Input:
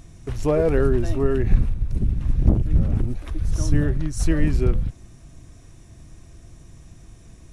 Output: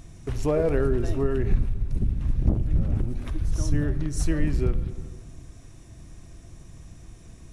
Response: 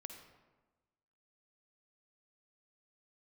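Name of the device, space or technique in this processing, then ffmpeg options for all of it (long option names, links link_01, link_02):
ducked reverb: -filter_complex "[0:a]asplit=3[link_01][link_02][link_03];[1:a]atrim=start_sample=2205[link_04];[link_02][link_04]afir=irnorm=-1:irlink=0[link_05];[link_03]apad=whole_len=331919[link_06];[link_05][link_06]sidechaincompress=threshold=-22dB:ratio=8:attack=16:release=390,volume=7.5dB[link_07];[link_01][link_07]amix=inputs=2:normalize=0,volume=-7.5dB"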